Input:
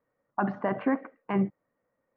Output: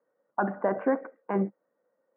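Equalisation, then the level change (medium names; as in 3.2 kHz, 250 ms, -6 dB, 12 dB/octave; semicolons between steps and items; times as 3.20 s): distance through air 67 m; cabinet simulation 190–2400 Hz, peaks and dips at 200 Hz +5 dB, 350 Hz +3 dB, 510 Hz +5 dB, 890 Hz +3 dB, 1.5 kHz +8 dB; peaking EQ 540 Hz +8 dB 1.8 oct; -6.5 dB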